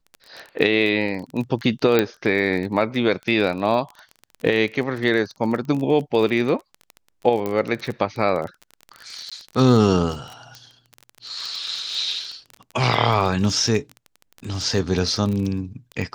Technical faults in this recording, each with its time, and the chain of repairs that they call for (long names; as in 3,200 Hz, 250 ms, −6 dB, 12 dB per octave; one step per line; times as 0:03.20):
surface crackle 24 per second −27 dBFS
0:01.99: click −5 dBFS
0:07.46: click −13 dBFS
0:09.30–0:09.32: drop-out 16 ms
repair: click removal
repair the gap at 0:09.30, 16 ms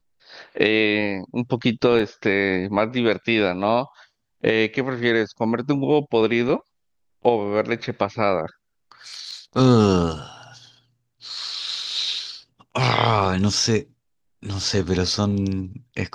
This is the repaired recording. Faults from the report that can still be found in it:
0:01.99: click